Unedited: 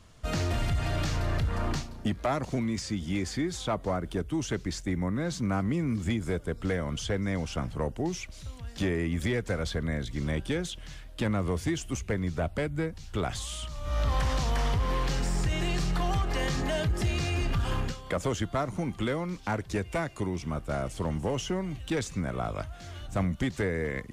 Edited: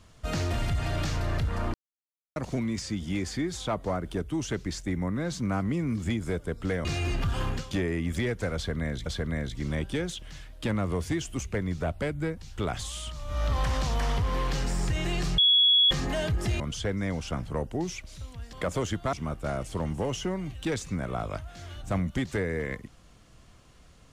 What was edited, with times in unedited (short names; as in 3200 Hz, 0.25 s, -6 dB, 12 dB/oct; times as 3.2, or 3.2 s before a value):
1.74–2.36 mute
6.85–8.78 swap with 17.16–18.02
9.62–10.13 loop, 2 plays
15.94–16.47 bleep 3360 Hz -17 dBFS
18.62–20.38 cut